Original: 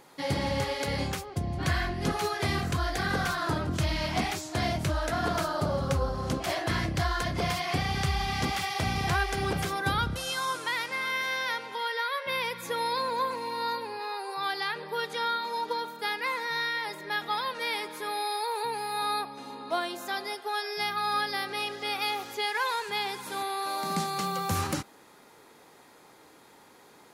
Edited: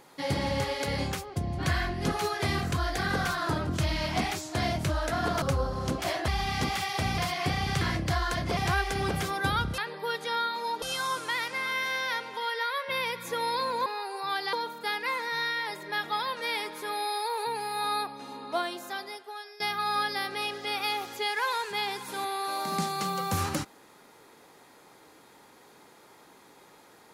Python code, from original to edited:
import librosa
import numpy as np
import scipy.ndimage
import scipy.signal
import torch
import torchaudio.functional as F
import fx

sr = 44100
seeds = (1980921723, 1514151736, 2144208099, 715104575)

y = fx.edit(x, sr, fx.cut(start_s=5.42, length_s=0.42),
    fx.swap(start_s=6.7, length_s=0.76, other_s=8.09, other_length_s=0.9),
    fx.cut(start_s=13.24, length_s=0.76),
    fx.move(start_s=14.67, length_s=1.04, to_s=10.2),
    fx.fade_out_to(start_s=19.74, length_s=1.04, floor_db=-17.0), tone=tone)